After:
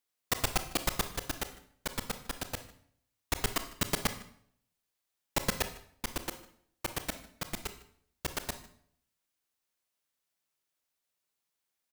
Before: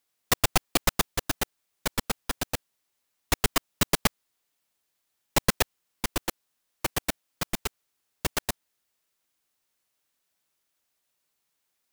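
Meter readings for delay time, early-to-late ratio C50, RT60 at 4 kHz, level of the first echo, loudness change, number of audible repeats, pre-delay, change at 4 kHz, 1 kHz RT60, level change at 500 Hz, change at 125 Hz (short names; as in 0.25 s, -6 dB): 0.152 s, 11.0 dB, 0.50 s, -21.5 dB, -7.0 dB, 1, 26 ms, -7.0 dB, 0.60 s, -7.0 dB, -6.5 dB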